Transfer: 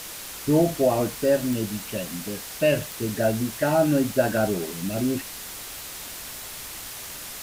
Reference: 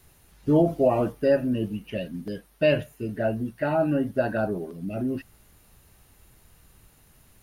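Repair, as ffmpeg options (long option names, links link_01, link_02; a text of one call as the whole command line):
ffmpeg -i in.wav -af "adeclick=threshold=4,afwtdn=0.016,asetnsamples=nb_out_samples=441:pad=0,asendcmd='2.81 volume volume -3dB',volume=0dB" out.wav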